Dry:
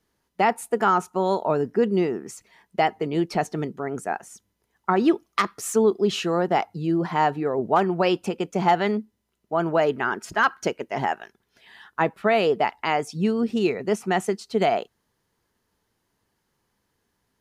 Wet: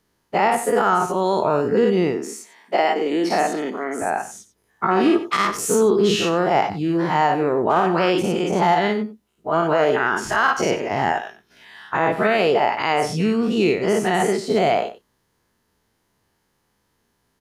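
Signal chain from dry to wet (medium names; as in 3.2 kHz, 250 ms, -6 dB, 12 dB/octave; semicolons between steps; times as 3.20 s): every event in the spectrogram widened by 120 ms; 2.15–4.02 s: steep high-pass 210 Hz 36 dB/octave; echo from a far wall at 16 m, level -14 dB; peak limiter -8 dBFS, peak gain reduction 5.5 dB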